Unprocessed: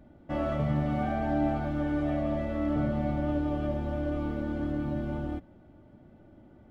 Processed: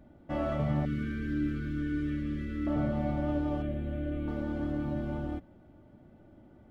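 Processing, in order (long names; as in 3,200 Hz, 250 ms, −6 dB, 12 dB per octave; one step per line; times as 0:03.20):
0:00.85–0:02.67: elliptic band-stop filter 440–1,400 Hz, stop band 60 dB
0:03.62–0:04.28: phaser with its sweep stopped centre 2,300 Hz, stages 4
level −1.5 dB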